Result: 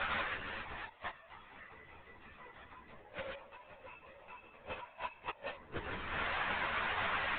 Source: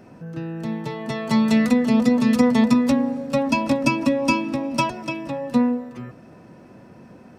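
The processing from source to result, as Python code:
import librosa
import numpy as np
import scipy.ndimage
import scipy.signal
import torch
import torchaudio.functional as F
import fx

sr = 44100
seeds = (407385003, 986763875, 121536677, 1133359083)

y = fx.delta_mod(x, sr, bps=32000, step_db=-34.0)
y = scipy.signal.sosfilt(scipy.signal.butter(2, 1200.0, 'highpass', fs=sr, output='sos'), y)
y = y + 10.0 ** (-21.0 / 20.0) * np.pad(y, (int(87 * sr / 1000.0), 0))[:len(y)]
y = fx.rev_spring(y, sr, rt60_s=1.4, pass_ms=(49,), chirp_ms=75, drr_db=7.0)
y = fx.gate_flip(y, sr, shuts_db=-28.0, range_db=-36)
y = fx.over_compress(y, sr, threshold_db=-48.0, ratio=-0.5)
y = fx.lpc_vocoder(y, sr, seeds[0], excitation='whisper', order=16)
y = scipy.signal.sosfilt(scipy.signal.butter(2, 2400.0, 'lowpass', fs=sr, output='sos'), y)
y = fx.ensemble(y, sr)
y = F.gain(torch.from_numpy(y), 15.0).numpy()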